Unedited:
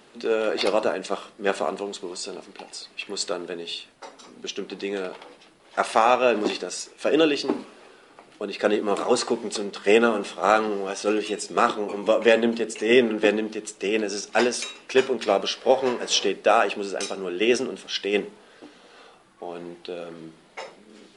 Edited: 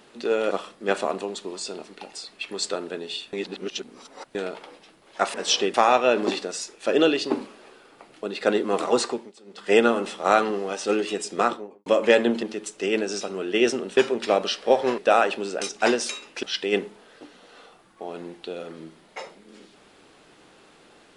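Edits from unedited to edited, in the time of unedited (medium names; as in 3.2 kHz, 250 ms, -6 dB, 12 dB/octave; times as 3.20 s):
0.51–1.09 s: delete
3.91–4.93 s: reverse
9.18–9.95 s: dip -22.5 dB, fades 0.33 s
11.49–12.04 s: studio fade out
12.61–13.44 s: delete
14.22–14.96 s: swap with 17.08–17.84 s
15.97–16.37 s: move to 5.92 s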